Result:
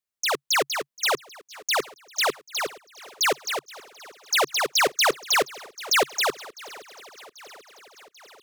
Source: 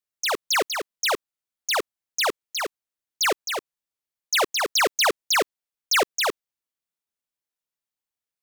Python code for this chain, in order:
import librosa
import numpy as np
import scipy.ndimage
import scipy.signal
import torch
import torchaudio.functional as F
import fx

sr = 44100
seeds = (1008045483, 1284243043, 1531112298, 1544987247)

y = fx.peak_eq(x, sr, hz=320.0, db=-2.0, octaves=0.41)
y = fx.echo_swing(y, sr, ms=789, ratio=1.5, feedback_pct=59, wet_db=-22)
y = fx.dynamic_eq(y, sr, hz=140.0, q=4.3, threshold_db=-59.0, ratio=4.0, max_db=7)